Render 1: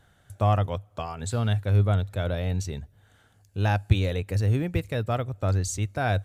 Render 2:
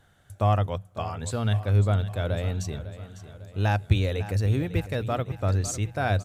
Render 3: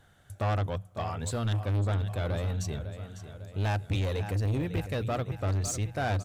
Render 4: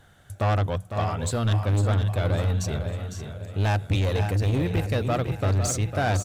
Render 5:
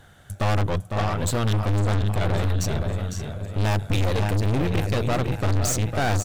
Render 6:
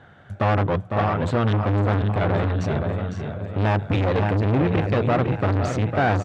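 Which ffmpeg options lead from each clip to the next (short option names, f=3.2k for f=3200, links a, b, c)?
-af "bandreject=f=60:t=h:w=6,bandreject=f=120:t=h:w=6,bandreject=f=180:t=h:w=6,aecho=1:1:551|1102|1653|2204|2755:0.2|0.0998|0.0499|0.0249|0.0125"
-af "asoftclip=type=tanh:threshold=-24.5dB"
-af "aecho=1:1:504:0.376,volume=5.5dB"
-af "aeval=exprs='(tanh(25.1*val(0)+0.7)-tanh(0.7))/25.1':c=same,volume=8dB"
-af "highpass=110,lowpass=2.2k,volume=4.5dB"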